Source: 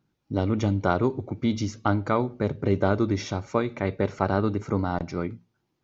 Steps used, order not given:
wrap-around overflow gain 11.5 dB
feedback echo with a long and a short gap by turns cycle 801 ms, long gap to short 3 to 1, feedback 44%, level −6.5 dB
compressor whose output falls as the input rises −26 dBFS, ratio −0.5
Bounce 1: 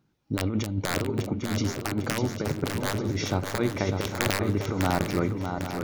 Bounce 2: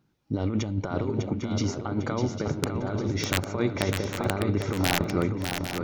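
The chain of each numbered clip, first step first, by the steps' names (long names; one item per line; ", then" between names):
wrap-around overflow, then compressor whose output falls as the input rises, then feedback echo with a long and a short gap by turns
compressor whose output falls as the input rises, then wrap-around overflow, then feedback echo with a long and a short gap by turns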